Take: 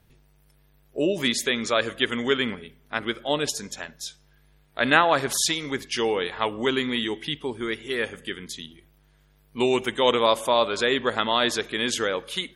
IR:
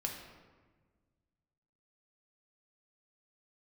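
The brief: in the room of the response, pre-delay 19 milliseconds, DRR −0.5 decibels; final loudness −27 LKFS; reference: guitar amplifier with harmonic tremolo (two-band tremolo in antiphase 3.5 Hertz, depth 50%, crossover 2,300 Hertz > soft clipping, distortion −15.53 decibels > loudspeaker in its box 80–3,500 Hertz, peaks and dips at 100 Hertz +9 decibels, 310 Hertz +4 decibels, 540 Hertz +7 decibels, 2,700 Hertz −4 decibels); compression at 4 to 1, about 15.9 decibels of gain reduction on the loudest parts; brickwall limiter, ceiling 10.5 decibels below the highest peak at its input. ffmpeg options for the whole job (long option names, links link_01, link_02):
-filter_complex "[0:a]acompressor=threshold=-34dB:ratio=4,alimiter=level_in=2.5dB:limit=-24dB:level=0:latency=1,volume=-2.5dB,asplit=2[link_01][link_02];[1:a]atrim=start_sample=2205,adelay=19[link_03];[link_02][link_03]afir=irnorm=-1:irlink=0,volume=-0.5dB[link_04];[link_01][link_04]amix=inputs=2:normalize=0,acrossover=split=2300[link_05][link_06];[link_05]aeval=exprs='val(0)*(1-0.5/2+0.5/2*cos(2*PI*3.5*n/s))':channel_layout=same[link_07];[link_06]aeval=exprs='val(0)*(1-0.5/2-0.5/2*cos(2*PI*3.5*n/s))':channel_layout=same[link_08];[link_07][link_08]amix=inputs=2:normalize=0,asoftclip=threshold=-31dB,highpass=80,equalizer=frequency=100:width_type=q:width=4:gain=9,equalizer=frequency=310:width_type=q:width=4:gain=4,equalizer=frequency=540:width_type=q:width=4:gain=7,equalizer=frequency=2700:width_type=q:width=4:gain=-4,lowpass=frequency=3500:width=0.5412,lowpass=frequency=3500:width=1.3066,volume=11.5dB"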